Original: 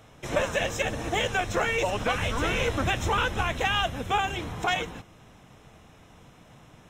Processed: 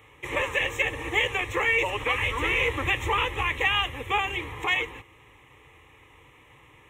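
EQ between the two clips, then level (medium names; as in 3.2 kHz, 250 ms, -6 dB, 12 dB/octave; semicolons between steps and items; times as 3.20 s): high-pass 41 Hz; peaking EQ 1.9 kHz +9.5 dB 1.1 oct; static phaser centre 1 kHz, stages 8; 0.0 dB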